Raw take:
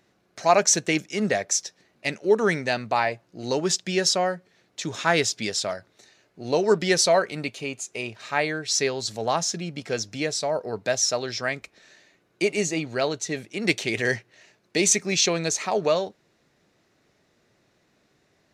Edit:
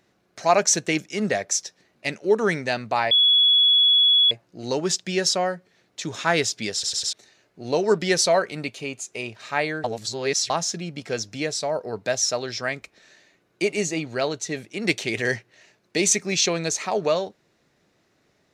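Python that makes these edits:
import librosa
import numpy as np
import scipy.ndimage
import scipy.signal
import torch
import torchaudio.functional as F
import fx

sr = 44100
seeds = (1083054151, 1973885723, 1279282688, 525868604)

y = fx.edit(x, sr, fx.insert_tone(at_s=3.11, length_s=1.2, hz=3380.0, db=-13.5),
    fx.stutter_over(start_s=5.53, slice_s=0.1, count=4),
    fx.reverse_span(start_s=8.64, length_s=0.66), tone=tone)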